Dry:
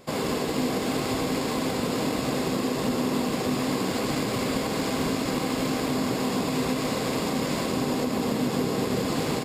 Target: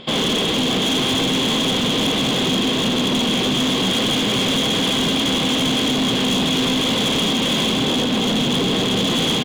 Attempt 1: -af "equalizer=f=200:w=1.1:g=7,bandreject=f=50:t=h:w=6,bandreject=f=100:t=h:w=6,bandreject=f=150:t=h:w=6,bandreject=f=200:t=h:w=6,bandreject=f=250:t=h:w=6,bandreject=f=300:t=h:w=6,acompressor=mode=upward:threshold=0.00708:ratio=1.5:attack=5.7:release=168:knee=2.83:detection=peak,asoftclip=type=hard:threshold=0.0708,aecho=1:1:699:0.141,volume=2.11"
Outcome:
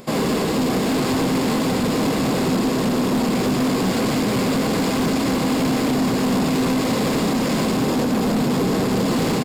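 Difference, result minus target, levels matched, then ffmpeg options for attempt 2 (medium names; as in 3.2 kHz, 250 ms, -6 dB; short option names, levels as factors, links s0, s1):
4 kHz band -10.5 dB
-af "lowpass=f=3300:t=q:w=15,equalizer=f=200:w=1.1:g=7,bandreject=f=50:t=h:w=6,bandreject=f=100:t=h:w=6,bandreject=f=150:t=h:w=6,bandreject=f=200:t=h:w=6,bandreject=f=250:t=h:w=6,bandreject=f=300:t=h:w=6,acompressor=mode=upward:threshold=0.00708:ratio=1.5:attack=5.7:release=168:knee=2.83:detection=peak,asoftclip=type=hard:threshold=0.0708,aecho=1:1:699:0.141,volume=2.11"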